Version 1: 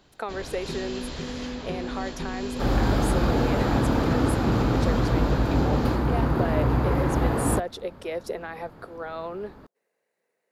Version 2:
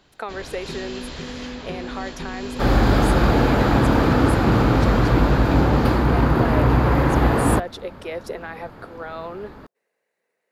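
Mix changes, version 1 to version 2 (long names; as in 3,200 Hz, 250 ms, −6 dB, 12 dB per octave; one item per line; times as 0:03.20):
second sound +5.5 dB
master: add parametric band 2,100 Hz +3.5 dB 2.1 octaves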